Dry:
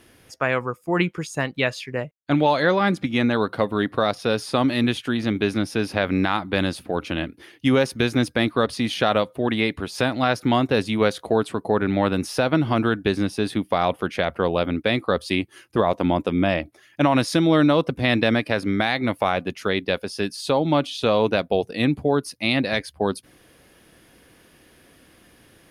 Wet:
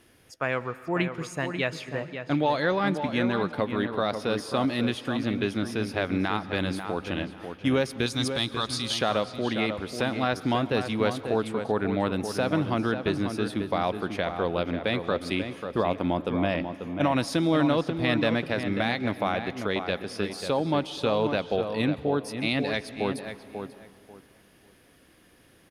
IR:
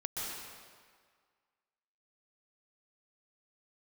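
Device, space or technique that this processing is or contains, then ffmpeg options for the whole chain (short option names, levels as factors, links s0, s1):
saturated reverb return: -filter_complex "[0:a]asettb=1/sr,asplit=3[s0][s1][s2];[s0]atrim=end=8.064[s3];[s1]atrim=start=8.06:end=8.99,asetpts=PTS-STARTPTS,afade=t=in:d=0.004:c=qsin,afade=t=out:st=0.926:d=0.004:c=qsin,equalizer=f=250:t=o:w=1:g=-5,equalizer=f=500:t=o:w=1:g=-11,equalizer=f=1000:t=o:w=1:g=4,equalizer=f=2000:t=o:w=1:g=-7,equalizer=f=4000:t=o:w=1:g=9,equalizer=f=8000:t=o:w=1:g=9[s4];[s2]atrim=start=8.986[s5];[s3][s4]acrossfade=d=0.004:c1=hsin:c2=qsin[s6];[s6][s5]acrossfade=d=0.004:c1=qsin:c2=hsin,asplit=2[s7][s8];[s8]adelay=541,lowpass=f=2300:p=1,volume=0.422,asplit=2[s9][s10];[s10]adelay=541,lowpass=f=2300:p=1,volume=0.22,asplit=2[s11][s12];[s12]adelay=541,lowpass=f=2300:p=1,volume=0.22[s13];[s7][s9][s11][s13]amix=inputs=4:normalize=0,asplit=2[s14][s15];[1:a]atrim=start_sample=2205[s16];[s15][s16]afir=irnorm=-1:irlink=0,asoftclip=type=tanh:threshold=0.168,volume=0.158[s17];[s14][s17]amix=inputs=2:normalize=0,volume=0.473"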